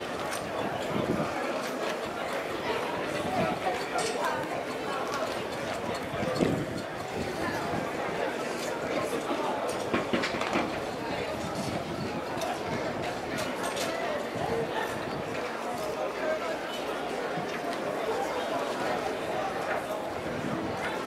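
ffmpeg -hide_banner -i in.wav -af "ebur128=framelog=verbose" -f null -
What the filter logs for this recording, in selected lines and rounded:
Integrated loudness:
  I:         -31.5 LUFS
  Threshold: -41.5 LUFS
Loudness range:
  LRA:         1.5 LU
  Threshold: -51.5 LUFS
  LRA low:   -32.2 LUFS
  LRA high:  -30.7 LUFS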